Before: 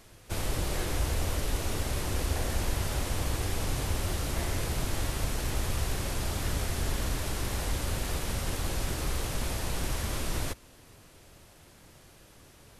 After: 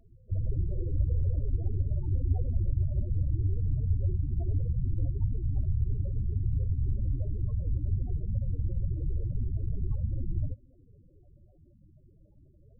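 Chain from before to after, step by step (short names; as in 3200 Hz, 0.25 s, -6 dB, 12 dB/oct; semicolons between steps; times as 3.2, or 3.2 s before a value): loudest bins only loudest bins 8; dynamic EQ 100 Hz, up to +8 dB, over -50 dBFS, Q 2.6; gain +1 dB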